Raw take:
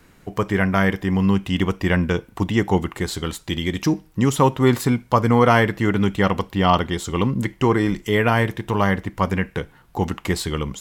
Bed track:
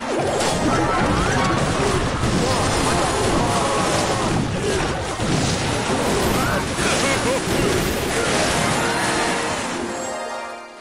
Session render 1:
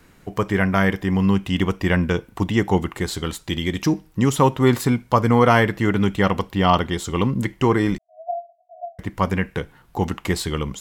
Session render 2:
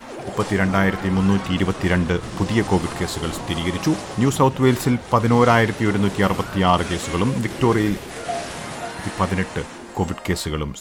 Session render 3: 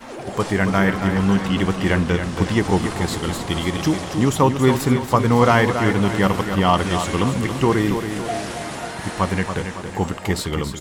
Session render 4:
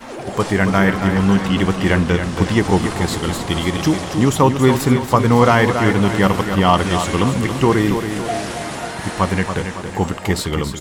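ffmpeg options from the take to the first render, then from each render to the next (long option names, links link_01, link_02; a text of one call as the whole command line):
ffmpeg -i in.wav -filter_complex "[0:a]asettb=1/sr,asplit=3[link_01][link_02][link_03];[link_01]atrim=end=7.984[link_04];[link_02]atrim=start=7.98:end=8.99,asetpts=PTS-STARTPTS,afade=type=in:duration=0.004:curve=qsin,afade=type=out:start_time=1.006:duration=0.004:curve=qsin,asuperpass=centerf=680:order=12:qfactor=7[link_05];[link_03]atrim=start=8.986[link_06];[link_04][link_05]acrossfade=duration=0.004:curve1=hsin:curve2=qsin[link_07];[link_07][link_06]acrossfade=duration=0.004:curve1=qsin:curve2=hsin" out.wav
ffmpeg -i in.wav -i bed.wav -filter_complex "[1:a]volume=-12dB[link_01];[0:a][link_01]amix=inputs=2:normalize=0" out.wav
ffmpeg -i in.wav -af "aecho=1:1:278|556|834|1112|1390|1668:0.398|0.191|0.0917|0.044|0.0211|0.0101" out.wav
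ffmpeg -i in.wav -af "volume=3dB,alimiter=limit=-1dB:level=0:latency=1" out.wav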